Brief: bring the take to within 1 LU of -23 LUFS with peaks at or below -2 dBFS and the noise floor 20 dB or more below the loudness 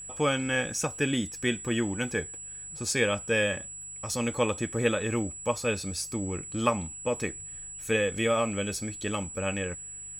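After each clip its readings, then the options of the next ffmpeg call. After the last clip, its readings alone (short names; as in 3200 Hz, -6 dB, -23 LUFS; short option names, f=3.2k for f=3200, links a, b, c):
hum 50 Hz; harmonics up to 150 Hz; hum level -57 dBFS; steady tone 7800 Hz; tone level -39 dBFS; loudness -29.5 LUFS; peak -11.0 dBFS; loudness target -23.0 LUFS
-> -af "bandreject=f=50:t=h:w=4,bandreject=f=100:t=h:w=4,bandreject=f=150:t=h:w=4"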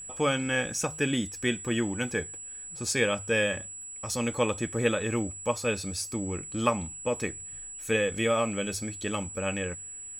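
hum none; steady tone 7800 Hz; tone level -39 dBFS
-> -af "bandreject=f=7.8k:w=30"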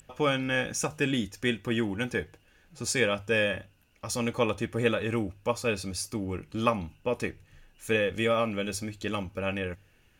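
steady tone none; loudness -29.5 LUFS; peak -11.0 dBFS; loudness target -23.0 LUFS
-> -af "volume=6.5dB"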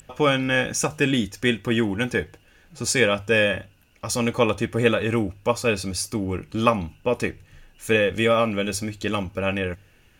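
loudness -23.0 LUFS; peak -4.5 dBFS; noise floor -57 dBFS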